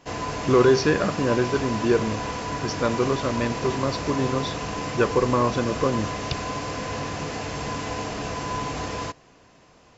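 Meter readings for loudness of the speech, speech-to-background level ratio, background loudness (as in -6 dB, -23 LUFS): -24.0 LUFS, 6.0 dB, -30.0 LUFS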